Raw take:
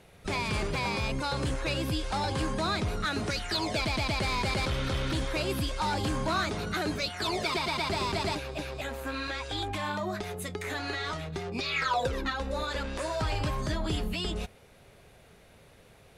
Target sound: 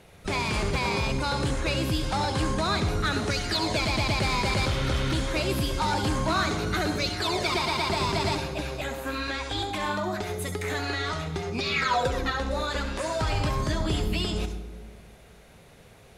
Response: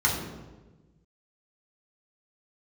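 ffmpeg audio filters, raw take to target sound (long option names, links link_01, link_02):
-filter_complex "[0:a]asplit=2[link_01][link_02];[link_02]bass=frequency=250:gain=-2,treble=frequency=4000:gain=8[link_03];[1:a]atrim=start_sample=2205,adelay=67[link_04];[link_03][link_04]afir=irnorm=-1:irlink=0,volume=-22dB[link_05];[link_01][link_05]amix=inputs=2:normalize=0,volume=3dB"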